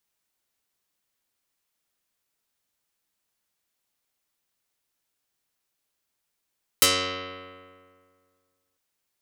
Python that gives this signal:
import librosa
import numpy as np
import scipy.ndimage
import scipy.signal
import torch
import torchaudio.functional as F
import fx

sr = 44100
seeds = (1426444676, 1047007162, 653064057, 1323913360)

y = fx.pluck(sr, length_s=1.95, note=42, decay_s=2.01, pick=0.11, brightness='dark')